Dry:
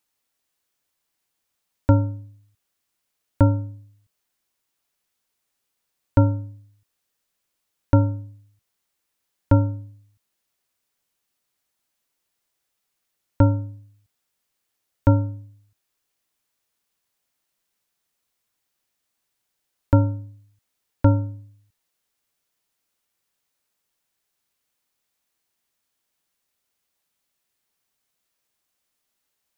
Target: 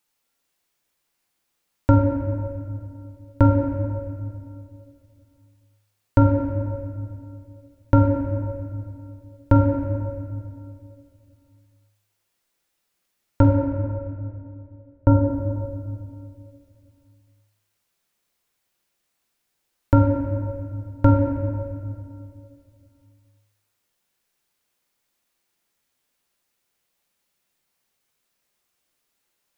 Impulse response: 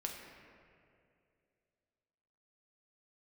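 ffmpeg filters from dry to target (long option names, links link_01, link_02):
-filter_complex "[0:a]asettb=1/sr,asplit=3[link_01][link_02][link_03];[link_01]atrim=end=13.424[link_04];[link_02]atrim=start=13.42:end=15.28,asetpts=PTS-STARTPTS,afade=type=in:duration=0.004:curve=qsin,afade=type=out:start_time=1.856:duration=0.004:curve=qsin,lowpass=1100[link_05];[link_03]atrim=start=15.276[link_06];[link_04][link_05]acrossfade=duration=0.004:curve1=hsin:curve2=qsin[link_07];[link_07][link_06]acrossfade=duration=0.004:curve1=qsin:curve2=hsin[link_08];[1:a]atrim=start_sample=2205[link_09];[link_08][link_09]afir=irnorm=-1:irlink=0,volume=4dB"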